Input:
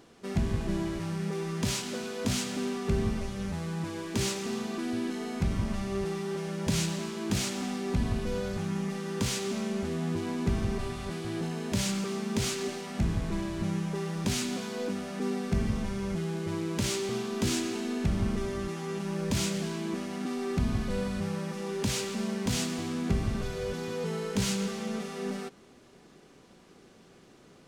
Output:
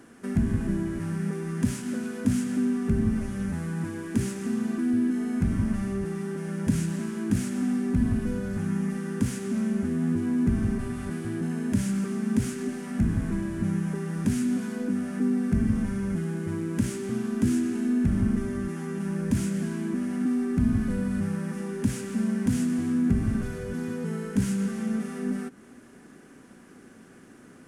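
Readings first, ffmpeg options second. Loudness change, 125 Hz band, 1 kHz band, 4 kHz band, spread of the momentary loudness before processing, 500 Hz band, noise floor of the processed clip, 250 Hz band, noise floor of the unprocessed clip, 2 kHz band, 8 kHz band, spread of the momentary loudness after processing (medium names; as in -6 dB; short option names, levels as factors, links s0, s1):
+4.0 dB, +3.5 dB, -4.0 dB, -11.0 dB, 5 LU, -1.5 dB, -51 dBFS, +7.0 dB, -56 dBFS, -1.0 dB, -4.5 dB, 6 LU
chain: -filter_complex "[0:a]equalizer=f=100:t=o:w=0.67:g=4,equalizer=f=250:t=o:w=0.67:g=11,equalizer=f=1600:t=o:w=0.67:g=10,equalizer=f=4000:t=o:w=0.67:g=-7,equalizer=f=10000:t=o:w=0.67:g=11,acrossover=split=330[s0][s1];[s1]acompressor=threshold=0.00794:ratio=2.5[s2];[s0][s2]amix=inputs=2:normalize=0"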